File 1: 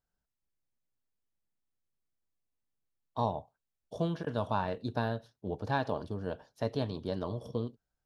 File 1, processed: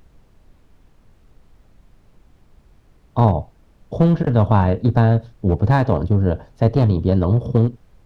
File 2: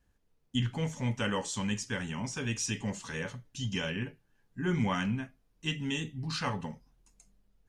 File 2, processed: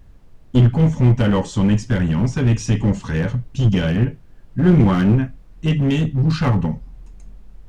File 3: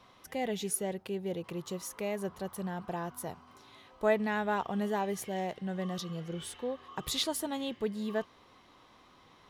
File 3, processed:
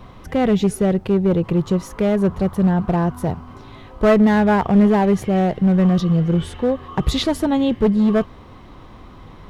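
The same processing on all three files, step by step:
RIAA equalisation playback
asymmetric clip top −25.5 dBFS
background noise brown −61 dBFS
loudness normalisation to −18 LKFS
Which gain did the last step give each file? +11.5, +11.0, +13.5 decibels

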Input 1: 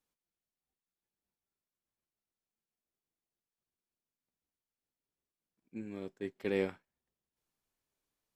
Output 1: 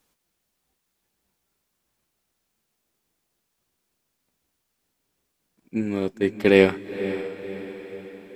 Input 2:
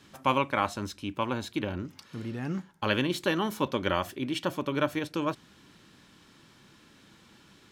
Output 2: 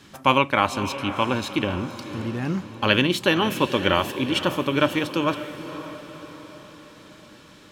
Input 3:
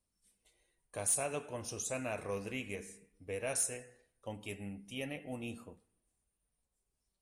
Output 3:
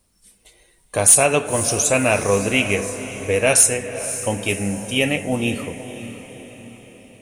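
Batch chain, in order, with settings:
feedback delay with all-pass diffusion 533 ms, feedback 51%, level −11.5 dB
dynamic equaliser 2,800 Hz, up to +5 dB, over −49 dBFS, Q 2.4
normalise the peak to −1.5 dBFS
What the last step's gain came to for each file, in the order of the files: +17.0, +6.5, +20.5 decibels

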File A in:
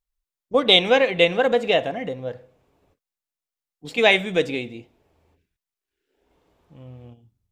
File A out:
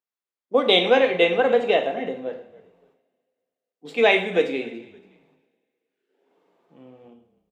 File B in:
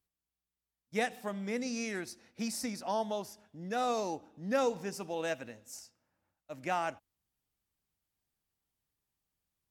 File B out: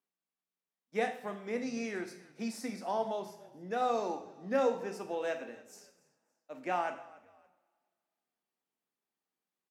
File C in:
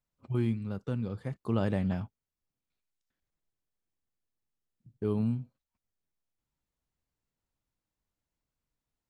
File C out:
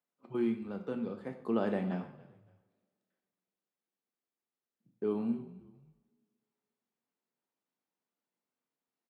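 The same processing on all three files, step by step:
high-pass filter 220 Hz 24 dB per octave
high-shelf EQ 3,400 Hz −11.5 dB
echo with shifted repeats 283 ms, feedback 32%, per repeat −41 Hz, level −21 dB
coupled-rooms reverb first 0.51 s, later 2.2 s, from −27 dB, DRR 5 dB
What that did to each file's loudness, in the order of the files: −1.0, 0.0, −2.5 LU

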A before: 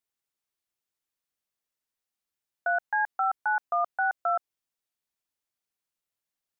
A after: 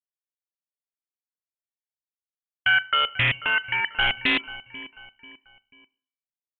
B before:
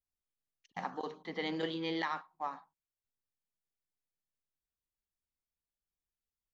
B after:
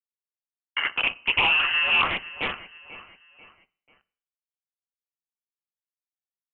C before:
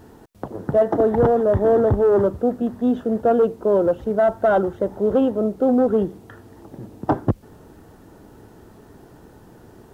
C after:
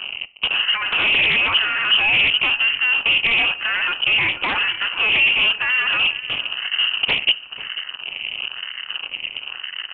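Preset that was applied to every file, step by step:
adaptive Wiener filter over 9 samples
notch filter 1,200 Hz, Q 7.9
low-pass that shuts in the quiet parts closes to 1,500 Hz, open at −17.5 dBFS
dynamic equaliser 990 Hz, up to +6 dB, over −37 dBFS, Q 2.1
downward compressor 2 to 1, threshold −32 dBFS
fuzz pedal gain 41 dB, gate −44 dBFS
all-pass phaser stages 4, 1 Hz, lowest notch 540–1,400 Hz
repeating echo 490 ms, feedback 39%, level −17 dB
four-comb reverb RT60 0.52 s, combs from 30 ms, DRR 19 dB
voice inversion scrambler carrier 3,000 Hz
highs frequency-modulated by the lows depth 0.29 ms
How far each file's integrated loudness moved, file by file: +6.5, +16.5, +2.5 LU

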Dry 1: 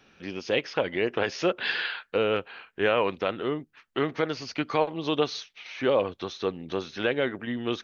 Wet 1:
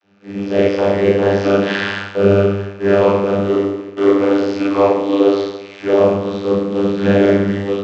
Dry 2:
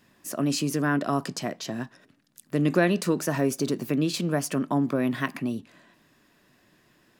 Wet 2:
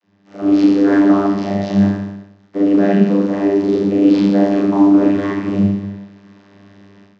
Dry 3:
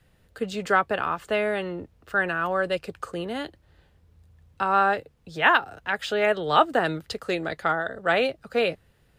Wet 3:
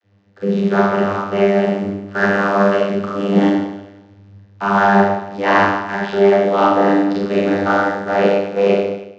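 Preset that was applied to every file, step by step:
variable-slope delta modulation 32 kbit/s
in parallel at −8 dB: bit-depth reduction 6 bits, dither none
on the sum: four-comb reverb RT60 0.93 s, combs from 28 ms, DRR −6 dB
channel vocoder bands 32, saw 99.5 Hz
automatic gain control gain up to 14 dB
level −1 dB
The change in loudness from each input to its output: +13.0, +12.5, +9.0 LU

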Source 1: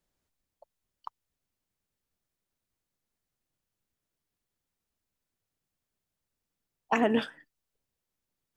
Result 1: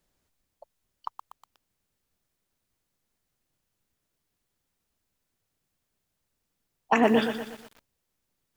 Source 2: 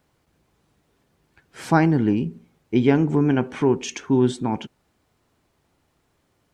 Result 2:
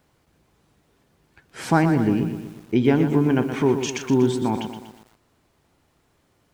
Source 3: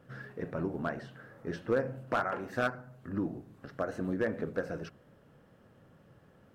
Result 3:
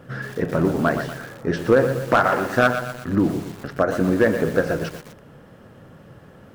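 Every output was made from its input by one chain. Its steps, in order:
in parallel at −0.5 dB: downward compressor 6 to 1, threshold −26 dBFS
on the sum: feedback echo at a low word length 121 ms, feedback 55%, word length 7 bits, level −8.5 dB
normalise the peak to −6 dBFS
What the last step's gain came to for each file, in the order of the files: +0.5, −3.0, +8.5 decibels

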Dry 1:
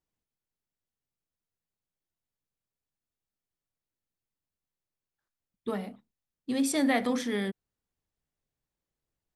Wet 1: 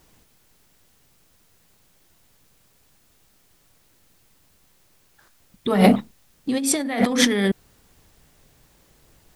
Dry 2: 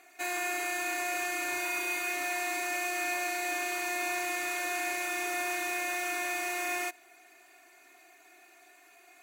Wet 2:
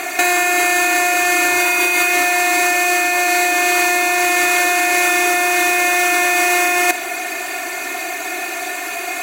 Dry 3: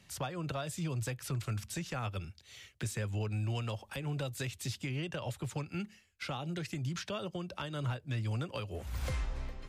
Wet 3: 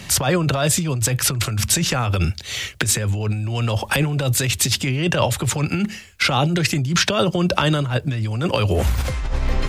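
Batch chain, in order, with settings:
compressor whose output falls as the input rises −41 dBFS, ratio −1
normalise the peak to −2 dBFS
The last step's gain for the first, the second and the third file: +20.5, +26.0, +21.5 decibels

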